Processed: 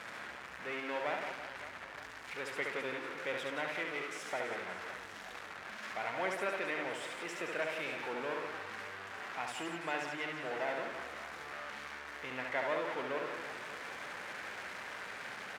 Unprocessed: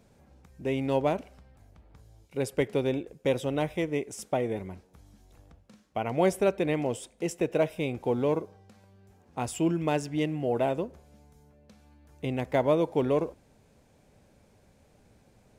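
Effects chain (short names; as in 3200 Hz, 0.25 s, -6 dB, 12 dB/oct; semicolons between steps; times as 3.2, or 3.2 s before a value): zero-crossing step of -28.5 dBFS; band-pass 1700 Hz, Q 1.9; reverse bouncing-ball echo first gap 70 ms, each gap 1.5×, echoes 5; gain -1 dB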